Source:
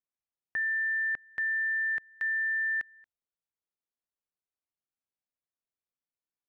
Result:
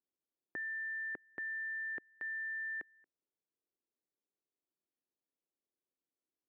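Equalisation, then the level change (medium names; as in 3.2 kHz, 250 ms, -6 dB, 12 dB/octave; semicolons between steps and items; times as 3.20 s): band-pass filter 340 Hz, Q 2; +9.5 dB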